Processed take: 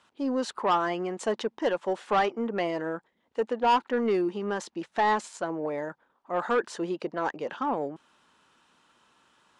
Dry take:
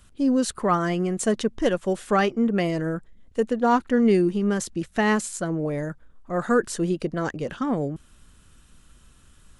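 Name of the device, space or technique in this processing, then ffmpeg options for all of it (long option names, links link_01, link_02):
intercom: -af "highpass=350,lowpass=4600,equalizer=frequency=900:width_type=o:width=0.48:gain=10,asoftclip=type=tanh:threshold=-15dB,volume=-2dB"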